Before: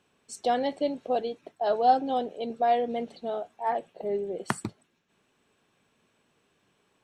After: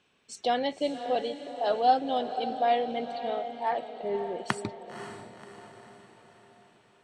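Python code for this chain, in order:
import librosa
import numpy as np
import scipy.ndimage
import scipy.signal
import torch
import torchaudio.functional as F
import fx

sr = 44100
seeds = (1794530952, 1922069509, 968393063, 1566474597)

p1 = scipy.signal.sosfilt(scipy.signal.butter(2, 8300.0, 'lowpass', fs=sr, output='sos'), x)
p2 = fx.peak_eq(p1, sr, hz=3000.0, db=6.5, octaves=1.7)
p3 = p2 + fx.echo_diffused(p2, sr, ms=536, feedback_pct=51, wet_db=-10, dry=0)
y = F.gain(torch.from_numpy(p3), -2.0).numpy()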